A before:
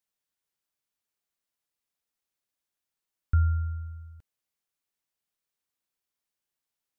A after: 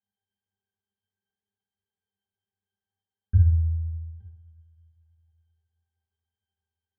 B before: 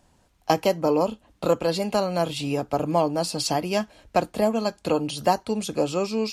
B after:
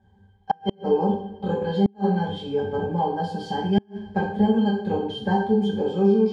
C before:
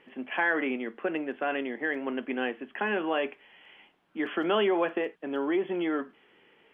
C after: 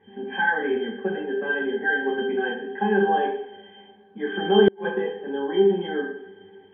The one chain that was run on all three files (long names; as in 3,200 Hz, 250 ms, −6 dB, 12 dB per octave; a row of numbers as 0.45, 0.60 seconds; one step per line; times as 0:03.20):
resonances in every octave G, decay 0.17 s
coupled-rooms reverb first 0.58 s, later 3.1 s, from −26 dB, DRR −4 dB
gate with flip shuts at −20 dBFS, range −35 dB
loudness normalisation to −24 LKFS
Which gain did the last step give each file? +10.5, +11.0, +16.0 decibels